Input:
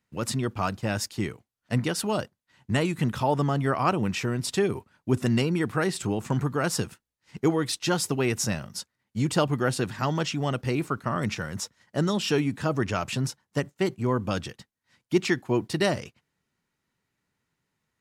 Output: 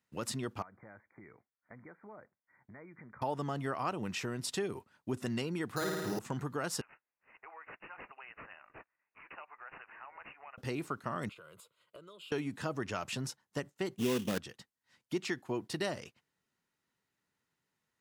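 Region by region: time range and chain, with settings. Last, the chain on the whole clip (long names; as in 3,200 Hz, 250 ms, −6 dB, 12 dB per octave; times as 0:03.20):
0:00.62–0:03.22: low-shelf EQ 480 Hz −5.5 dB + downward compressor 5 to 1, threshold −44 dBFS + linear-phase brick-wall low-pass 2,400 Hz
0:05.76–0:06.19: flutter between parallel walls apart 9.3 metres, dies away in 1.3 s + bad sample-rate conversion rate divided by 8×, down filtered, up hold
0:06.81–0:10.58: high-pass filter 810 Hz 24 dB per octave + downward compressor 2.5 to 1, threshold −48 dBFS + bad sample-rate conversion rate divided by 8×, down none, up filtered
0:11.29–0:12.32: high-pass filter 160 Hz + downward compressor 12 to 1, threshold −40 dBFS + phaser with its sweep stopped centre 1,200 Hz, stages 8
0:13.98–0:14.38: hollow resonant body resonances 220/400/1,600/3,500 Hz, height 12 dB, ringing for 25 ms + sample-rate reduction 3,100 Hz, jitter 20%
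whole clip: low-shelf EQ 160 Hz −9 dB; notch filter 2,300 Hz, Q 26; downward compressor 2 to 1, threshold −32 dBFS; level −4 dB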